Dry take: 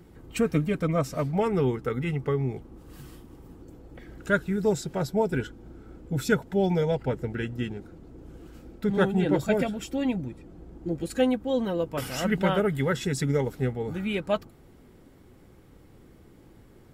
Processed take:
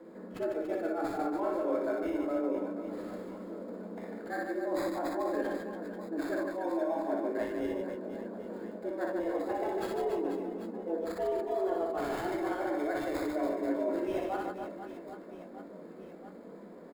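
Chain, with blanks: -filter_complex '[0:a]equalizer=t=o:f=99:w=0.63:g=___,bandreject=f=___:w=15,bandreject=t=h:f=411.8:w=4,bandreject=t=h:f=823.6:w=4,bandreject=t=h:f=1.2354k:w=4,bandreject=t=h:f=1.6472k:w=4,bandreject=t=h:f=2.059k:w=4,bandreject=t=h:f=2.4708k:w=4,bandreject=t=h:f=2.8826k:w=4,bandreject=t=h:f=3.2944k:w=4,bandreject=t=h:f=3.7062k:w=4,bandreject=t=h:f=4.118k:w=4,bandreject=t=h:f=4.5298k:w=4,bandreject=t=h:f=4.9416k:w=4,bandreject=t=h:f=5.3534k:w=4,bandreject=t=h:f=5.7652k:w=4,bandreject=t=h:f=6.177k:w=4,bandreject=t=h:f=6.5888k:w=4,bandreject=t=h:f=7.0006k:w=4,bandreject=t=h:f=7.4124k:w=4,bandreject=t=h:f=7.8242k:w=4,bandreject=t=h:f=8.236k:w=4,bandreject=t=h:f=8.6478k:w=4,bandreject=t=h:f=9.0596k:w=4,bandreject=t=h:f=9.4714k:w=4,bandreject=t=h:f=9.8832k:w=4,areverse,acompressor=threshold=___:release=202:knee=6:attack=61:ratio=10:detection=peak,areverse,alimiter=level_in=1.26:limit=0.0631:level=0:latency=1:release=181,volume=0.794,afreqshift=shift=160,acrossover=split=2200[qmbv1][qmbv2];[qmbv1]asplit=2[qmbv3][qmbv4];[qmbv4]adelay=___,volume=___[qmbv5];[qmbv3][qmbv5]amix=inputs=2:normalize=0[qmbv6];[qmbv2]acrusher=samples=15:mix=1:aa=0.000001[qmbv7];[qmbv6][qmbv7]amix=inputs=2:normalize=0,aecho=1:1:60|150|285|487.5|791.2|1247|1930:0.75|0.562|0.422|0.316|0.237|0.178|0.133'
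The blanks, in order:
-3, 2.3k, 0.0158, 21, 0.501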